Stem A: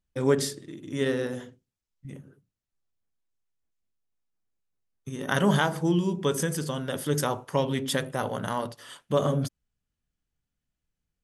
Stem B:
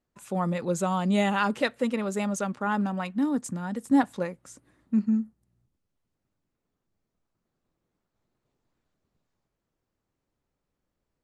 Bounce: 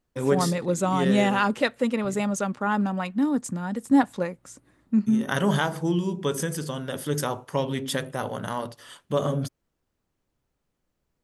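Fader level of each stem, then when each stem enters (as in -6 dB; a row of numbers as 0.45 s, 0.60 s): -0.5 dB, +2.5 dB; 0.00 s, 0.00 s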